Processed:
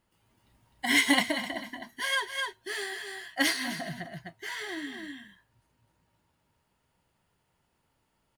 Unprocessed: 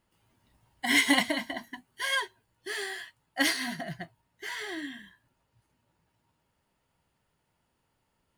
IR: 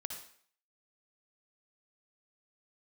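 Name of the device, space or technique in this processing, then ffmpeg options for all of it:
ducked delay: -filter_complex "[0:a]asplit=3[s0][s1][s2];[s1]adelay=255,volume=0.668[s3];[s2]apad=whole_len=380552[s4];[s3][s4]sidechaincompress=threshold=0.00562:ratio=4:attack=16:release=136[s5];[s0][s5]amix=inputs=2:normalize=0"

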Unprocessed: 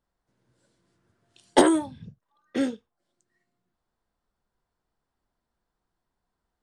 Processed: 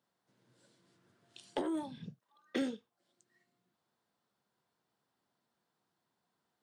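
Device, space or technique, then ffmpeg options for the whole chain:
broadcast voice chain: -filter_complex "[0:a]highpass=f=120:w=0.5412,highpass=f=120:w=1.3066,deesser=0.95,acompressor=threshold=0.0316:ratio=4,equalizer=f=3600:t=o:w=1.1:g=4,alimiter=limit=0.075:level=0:latency=1:release=387,asettb=1/sr,asplit=3[s0][s1][s2];[s0]atrim=end=1.834[s3];[s1]atrim=start=1.83:end=2.62,asetpts=PTS-STARTPTS,afade=t=in:d=0.004:c=qsin,afade=t=out:st=0.786:d=0.004:c=qsin,highpass=150[s4];[s2]atrim=start=2.616[s5];[s3][s4]acrossfade=d=0.004:c1=hsin:c2=qsin[s6];[s6][s5]acrossfade=d=0.004:c1=qsin:c2=hsin"

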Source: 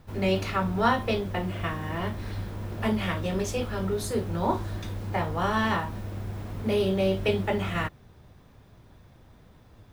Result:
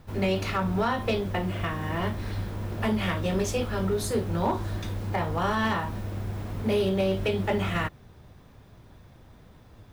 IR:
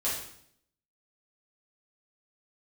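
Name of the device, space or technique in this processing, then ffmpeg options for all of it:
limiter into clipper: -af "alimiter=limit=0.133:level=0:latency=1:release=158,asoftclip=type=hard:threshold=0.1,volume=1.26"

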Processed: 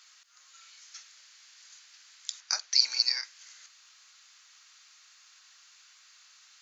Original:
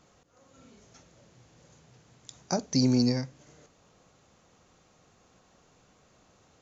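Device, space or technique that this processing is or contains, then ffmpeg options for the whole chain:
headphones lying on a table: -filter_complex "[0:a]highpass=f=1500:w=0.5412,highpass=f=1500:w=1.3066,equalizer=f=4600:t=o:w=0.55:g=7,asettb=1/sr,asplit=3[s0][s1][s2];[s0]atrim=end=2.404[s3];[s1]atrim=start=2.4:end=3.24,asetpts=PTS-STARTPTS,afade=t=in:d=0.004:c=qsin,afade=t=out:st=0.836:d=0.004:c=qsin,aemphasis=mode=reproduction:type=50fm[s4];[s2]atrim=start=3.236[s5];[s3][s4]acrossfade=d=0.004:c1=hsin:c2=qsin[s6];[s6][s5]acrossfade=d=0.004:c1=qsin:c2=hsin,volume=2.66"

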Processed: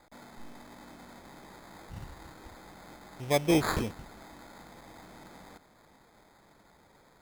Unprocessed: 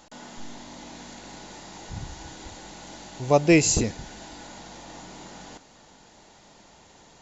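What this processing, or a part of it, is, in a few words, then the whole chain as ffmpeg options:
crushed at another speed: -af "asetrate=22050,aresample=44100,acrusher=samples=31:mix=1:aa=0.000001,asetrate=88200,aresample=44100,volume=0.422"

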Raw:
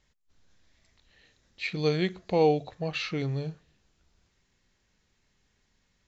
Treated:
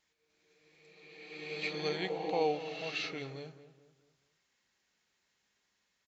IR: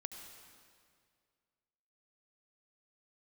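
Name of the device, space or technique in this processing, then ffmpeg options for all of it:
ghost voice: -filter_complex "[0:a]areverse[s0];[1:a]atrim=start_sample=2205[s1];[s0][s1]afir=irnorm=-1:irlink=0,areverse,highpass=f=670:p=1,asplit=2[s2][s3];[s3]adelay=215,lowpass=f=1700:p=1,volume=0.224,asplit=2[s4][s5];[s5]adelay=215,lowpass=f=1700:p=1,volume=0.42,asplit=2[s6][s7];[s7]adelay=215,lowpass=f=1700:p=1,volume=0.42,asplit=2[s8][s9];[s9]adelay=215,lowpass=f=1700:p=1,volume=0.42[s10];[s2][s4][s6][s8][s10]amix=inputs=5:normalize=0"

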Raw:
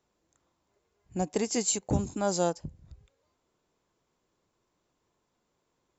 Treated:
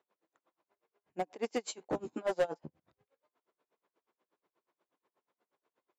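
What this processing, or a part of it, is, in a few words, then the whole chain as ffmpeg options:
helicopter radio: -filter_complex "[0:a]highpass=370,lowpass=2600,aeval=exprs='val(0)*pow(10,-29*(0.5-0.5*cos(2*PI*8.3*n/s))/20)':c=same,asoftclip=type=hard:threshold=0.0316,asettb=1/sr,asplit=3[s0][s1][s2];[s0]atrim=end=1.664[s3];[s1]atrim=start=1.66:end=2.8,asetpts=PTS-STARTPTS,afade=t=in:d=0.004:c=qsin,afade=t=out:st=1.136:d=0.004:c=qsin,asplit=2[s4][s5];[s5]adelay=13,volume=0.794[s6];[s4][s6]amix=inputs=2:normalize=0,atrim=end_sample=50274[s7];[s2]atrim=start=2.796[s8];[s3][s7]acrossfade=d=0.004:c1=hsin:c2=qsin[s9];[s9][s8]acrossfade=d=0.004:c1=qsin:c2=hsin,volume=1.5"

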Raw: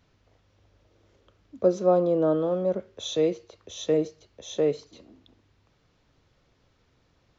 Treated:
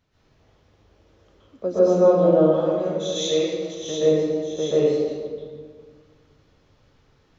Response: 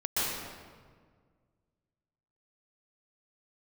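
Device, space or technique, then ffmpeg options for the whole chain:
stairwell: -filter_complex "[0:a]asettb=1/sr,asplit=3[s0][s1][s2];[s0]atrim=end=2.404[s3];[s1]atrim=start=2.4:end=3.75,asetpts=PTS-STARTPTS,afade=t=in:d=0.004:c=qsin,afade=t=out:st=1.346:d=0.004:c=qsin,tiltshelf=f=1300:g=-5.5[s4];[s2]atrim=start=3.746[s5];[s3][s4]acrossfade=d=0.004:c1=hsin:c2=qsin[s6];[s6][s5]acrossfade=d=0.004:c1=qsin:c2=hsin[s7];[1:a]atrim=start_sample=2205[s8];[s7][s8]afir=irnorm=-1:irlink=0,volume=0.631"

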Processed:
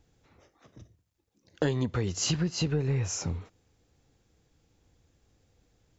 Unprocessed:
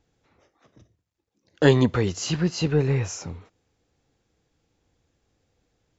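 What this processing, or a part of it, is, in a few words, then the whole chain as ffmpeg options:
ASMR close-microphone chain: -af "lowshelf=f=170:g=6.5,acompressor=threshold=0.0562:ratio=8,highshelf=f=6100:g=5.5"

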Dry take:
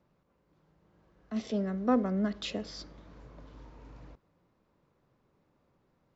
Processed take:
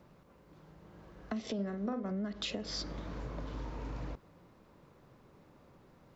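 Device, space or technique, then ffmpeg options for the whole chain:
serial compression, peaks first: -filter_complex "[0:a]acompressor=threshold=0.00794:ratio=5,acompressor=threshold=0.00447:ratio=2.5,asettb=1/sr,asplit=3[s0][s1][s2];[s0]atrim=end=1.544[s3];[s1]atrim=start=1.54:end=2.11,asetpts=PTS-STARTPTS,afade=t=in:d=0.004:c=qsin,afade=t=out:st=0.566:d=0.004:c=qsin,asplit=2[s4][s5];[s5]adelay=45,volume=0.422[s6];[s4][s6]amix=inputs=2:normalize=0,atrim=end_sample=25137[s7];[s2]atrim=start=2.106[s8];[s3][s7]acrossfade=d=0.004:c1=hsin:c2=qsin[s9];[s9][s8]acrossfade=d=0.004:c1=qsin:c2=hsin,volume=3.55"

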